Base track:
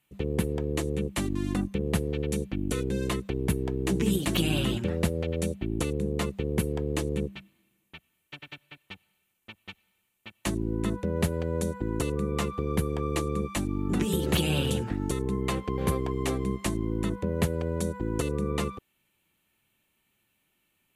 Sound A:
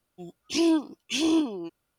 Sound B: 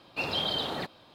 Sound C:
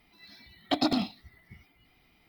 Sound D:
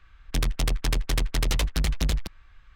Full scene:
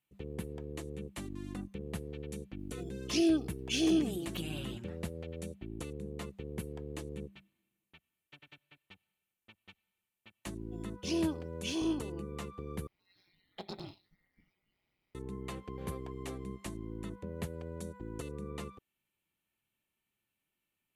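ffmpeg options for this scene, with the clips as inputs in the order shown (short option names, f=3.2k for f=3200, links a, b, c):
-filter_complex "[1:a]asplit=2[a][b];[0:a]volume=-13dB[c];[a]asuperstop=centerf=1000:order=4:qfactor=2.2[d];[3:a]aeval=exprs='val(0)*sin(2*PI*94*n/s)':c=same[e];[c]asplit=2[f][g];[f]atrim=end=12.874[h];[e]atrim=end=2.28,asetpts=PTS-STARTPTS,volume=-15dB[i];[g]atrim=start=15.146[j];[d]atrim=end=1.98,asetpts=PTS-STARTPTS,volume=-5dB,afade=t=in:d=0.004:c=hsin,afade=t=out:st=1.976:d=0.004:c=hsin,adelay=2590[k];[b]atrim=end=1.98,asetpts=PTS-STARTPTS,volume=-10dB,afade=t=in:d=0.004:c=hsin,afade=t=out:st=1.976:d=0.004:c=hsin,adelay=10530[l];[h][i]acrossfade=d=0.004:c1=hsin:c2=hsin[m];[m][j]acrossfade=d=0.004:c1=hsin:c2=hsin[n];[n][k][l]amix=inputs=3:normalize=0"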